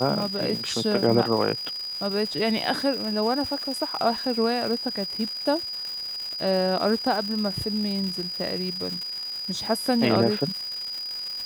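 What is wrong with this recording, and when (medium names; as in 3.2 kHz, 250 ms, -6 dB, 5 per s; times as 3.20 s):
crackle 390 per s -31 dBFS
whine 4.9 kHz -30 dBFS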